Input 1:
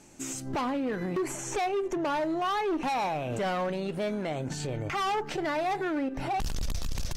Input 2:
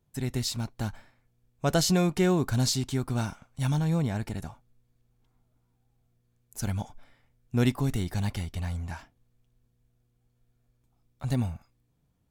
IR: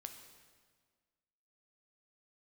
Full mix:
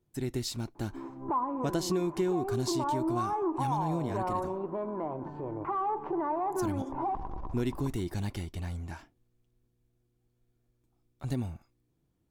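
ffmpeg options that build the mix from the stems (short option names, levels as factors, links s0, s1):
-filter_complex "[0:a]lowpass=f=1000:t=q:w=12,adelay=750,volume=0.355,asplit=2[s0][s1];[s1]volume=0.15[s2];[1:a]volume=0.596[s3];[s2]aecho=0:1:124|248|372|496|620|744|868|992|1116:1|0.57|0.325|0.185|0.106|0.0602|0.0343|0.0195|0.0111[s4];[s0][s3][s4]amix=inputs=3:normalize=0,equalizer=f=340:t=o:w=0.47:g=12,acompressor=threshold=0.0447:ratio=4"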